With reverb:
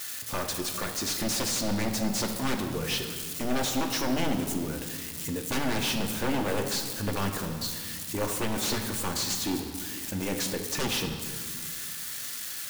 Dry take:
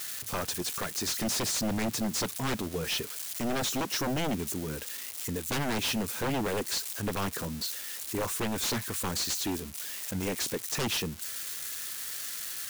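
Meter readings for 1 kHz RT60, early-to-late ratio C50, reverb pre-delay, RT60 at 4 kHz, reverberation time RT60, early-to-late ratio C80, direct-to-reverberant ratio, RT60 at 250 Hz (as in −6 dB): 1.6 s, 6.0 dB, 3 ms, 1.4 s, 1.7 s, 7.5 dB, 3.0 dB, 2.6 s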